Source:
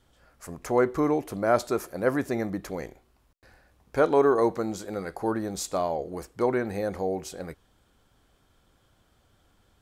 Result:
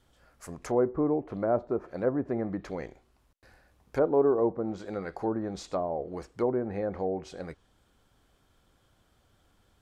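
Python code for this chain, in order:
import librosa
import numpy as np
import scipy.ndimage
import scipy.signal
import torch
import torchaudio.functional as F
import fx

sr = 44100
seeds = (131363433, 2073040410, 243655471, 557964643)

y = fx.env_lowpass_down(x, sr, base_hz=730.0, full_db=-22.5)
y = y * 10.0 ** (-2.0 / 20.0)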